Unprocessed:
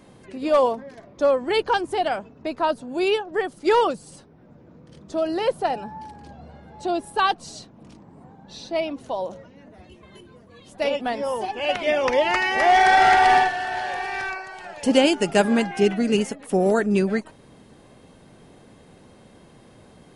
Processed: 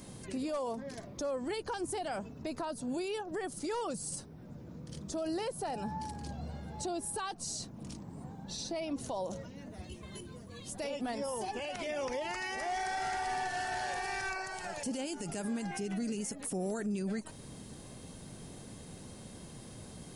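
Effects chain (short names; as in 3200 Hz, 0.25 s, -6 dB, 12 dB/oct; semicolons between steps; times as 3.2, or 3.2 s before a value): compressor 3:1, threshold -28 dBFS, peak gain reduction 12.5 dB; tone controls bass +7 dB, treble +14 dB; limiter -25.5 dBFS, peak gain reduction 16 dB; dynamic EQ 3400 Hz, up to -5 dB, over -50 dBFS, Q 1.5; gain -3 dB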